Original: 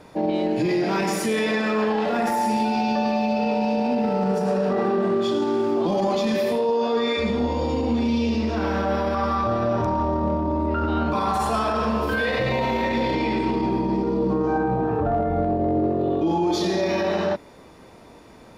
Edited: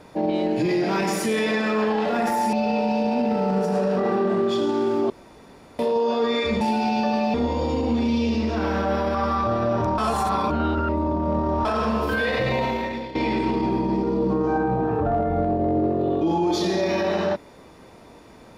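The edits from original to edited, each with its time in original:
0:02.53–0:03.26: move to 0:07.34
0:05.83–0:06.52: fill with room tone
0:09.98–0:11.65: reverse
0:12.60–0:13.15: fade out, to −16 dB

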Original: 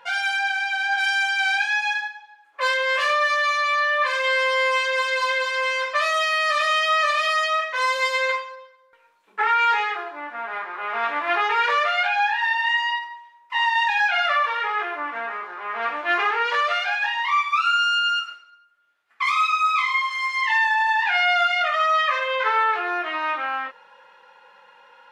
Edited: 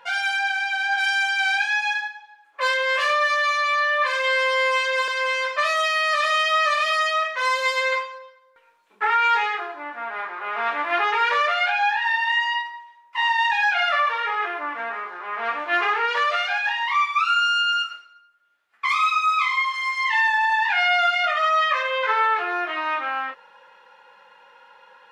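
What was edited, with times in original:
0:05.08–0:05.45: remove

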